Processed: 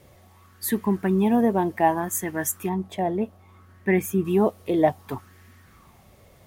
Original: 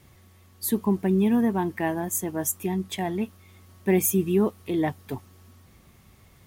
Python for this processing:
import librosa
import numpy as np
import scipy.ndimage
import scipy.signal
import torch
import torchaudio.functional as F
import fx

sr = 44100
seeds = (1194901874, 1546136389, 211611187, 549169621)

y = fx.high_shelf(x, sr, hz=2000.0, db=-10.5, at=(2.69, 4.25))
y = fx.bell_lfo(y, sr, hz=0.64, low_hz=540.0, high_hz=1900.0, db=13)